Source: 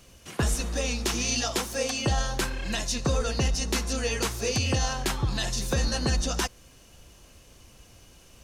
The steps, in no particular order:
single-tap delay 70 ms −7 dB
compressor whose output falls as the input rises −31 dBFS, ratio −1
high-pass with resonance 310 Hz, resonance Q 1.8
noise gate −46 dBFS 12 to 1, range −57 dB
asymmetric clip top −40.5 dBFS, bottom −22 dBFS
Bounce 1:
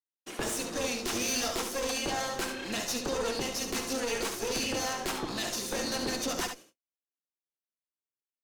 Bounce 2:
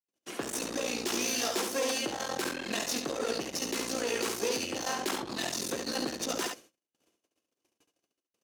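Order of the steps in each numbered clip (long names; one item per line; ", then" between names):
high-pass with resonance, then noise gate, then asymmetric clip, then compressor whose output falls as the input rises, then single-tap delay
asymmetric clip, then noise gate, then single-tap delay, then compressor whose output falls as the input rises, then high-pass with resonance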